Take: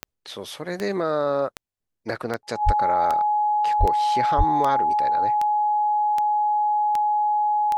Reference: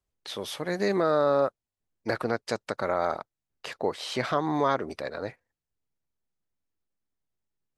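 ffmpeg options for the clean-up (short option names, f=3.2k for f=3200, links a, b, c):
-filter_complex "[0:a]adeclick=t=4,bandreject=f=840:w=30,asplit=3[a][b][c];[a]afade=t=out:st=2.65:d=0.02[d];[b]highpass=f=140:w=0.5412,highpass=f=140:w=1.3066,afade=t=in:st=2.65:d=0.02,afade=t=out:st=2.77:d=0.02[e];[c]afade=t=in:st=2.77:d=0.02[f];[d][e][f]amix=inputs=3:normalize=0,asplit=3[g][h][i];[g]afade=t=out:st=3.79:d=0.02[j];[h]highpass=f=140:w=0.5412,highpass=f=140:w=1.3066,afade=t=in:st=3.79:d=0.02,afade=t=out:st=3.91:d=0.02[k];[i]afade=t=in:st=3.91:d=0.02[l];[j][k][l]amix=inputs=3:normalize=0,asplit=3[m][n][o];[m]afade=t=out:st=4.37:d=0.02[p];[n]highpass=f=140:w=0.5412,highpass=f=140:w=1.3066,afade=t=in:st=4.37:d=0.02,afade=t=out:st=4.49:d=0.02[q];[o]afade=t=in:st=4.49:d=0.02[r];[p][q][r]amix=inputs=3:normalize=0,asetnsamples=n=441:p=0,asendcmd='6.87 volume volume -8.5dB',volume=0dB"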